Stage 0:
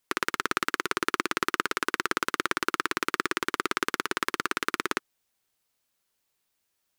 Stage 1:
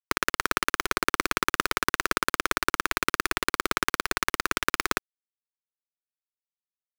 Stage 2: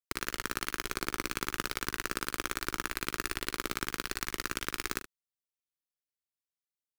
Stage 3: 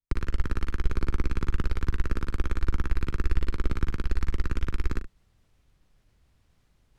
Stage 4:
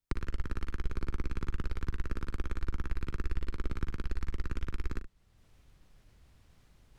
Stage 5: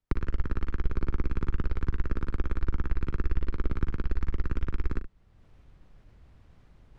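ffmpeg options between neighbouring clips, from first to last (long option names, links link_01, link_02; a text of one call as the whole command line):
ffmpeg -i in.wav -af "acrusher=bits=4:dc=4:mix=0:aa=0.000001,volume=2.5dB" out.wav
ffmpeg -i in.wav -filter_complex "[0:a]equalizer=frequency=940:width_type=o:width=2.6:gain=-8.5,asoftclip=type=tanh:threshold=-12.5dB,asplit=2[link_01][link_02];[link_02]aecho=0:1:42|73:0.266|0.188[link_03];[link_01][link_03]amix=inputs=2:normalize=0,volume=-2.5dB" out.wav
ffmpeg -i in.wav -af "aemphasis=mode=reproduction:type=riaa,areverse,acompressor=mode=upward:threshold=-42dB:ratio=2.5,areverse,lowshelf=frequency=130:gain=10.5,volume=-3.5dB" out.wav
ffmpeg -i in.wav -af "acompressor=threshold=-52dB:ratio=1.5,volume=4dB" out.wav
ffmpeg -i in.wav -af "lowpass=frequency=1500:poles=1,volume=6dB" out.wav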